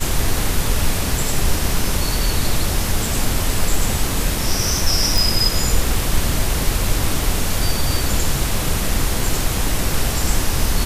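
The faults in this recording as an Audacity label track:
5.180000	5.180000	pop

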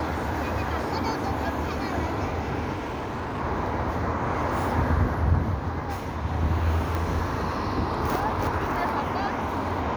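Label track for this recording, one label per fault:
2.730000	3.410000	clipped -27.5 dBFS
6.950000	6.950000	pop

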